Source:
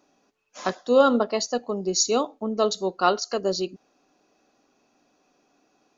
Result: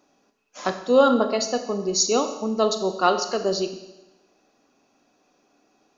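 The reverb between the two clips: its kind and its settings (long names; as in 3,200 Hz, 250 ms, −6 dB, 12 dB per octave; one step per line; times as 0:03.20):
four-comb reverb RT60 1 s, combs from 28 ms, DRR 8 dB
level +1 dB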